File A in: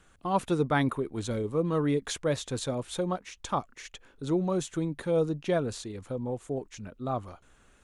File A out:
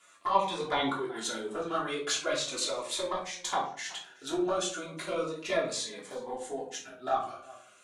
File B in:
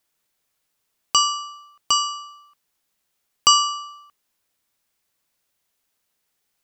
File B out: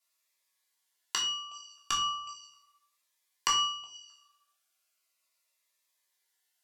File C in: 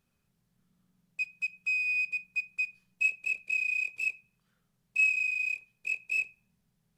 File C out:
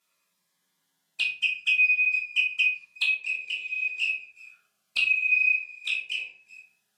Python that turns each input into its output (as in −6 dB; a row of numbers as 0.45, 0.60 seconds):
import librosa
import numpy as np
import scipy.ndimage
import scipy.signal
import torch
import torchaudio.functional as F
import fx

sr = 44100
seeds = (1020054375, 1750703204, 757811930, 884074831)

y = scipy.signal.sosfilt(scipy.signal.butter(2, 770.0, 'highpass', fs=sr, output='sos'), x)
y = y + 10.0 ** (-22.5 / 20.0) * np.pad(y, (int(368 * sr / 1000.0), 0))[:len(y)]
y = fx.env_flanger(y, sr, rest_ms=11.0, full_db=-27.0)
y = fx.env_lowpass_down(y, sr, base_hz=2400.0, full_db=-28.5)
y = fx.room_shoebox(y, sr, seeds[0], volume_m3=380.0, walls='furnished', distance_m=3.1)
y = fx.notch_cascade(y, sr, direction='falling', hz=0.37)
y = librosa.util.normalize(y) * 10.0 ** (-12 / 20.0)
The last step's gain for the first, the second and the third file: +6.5, −2.5, +9.0 decibels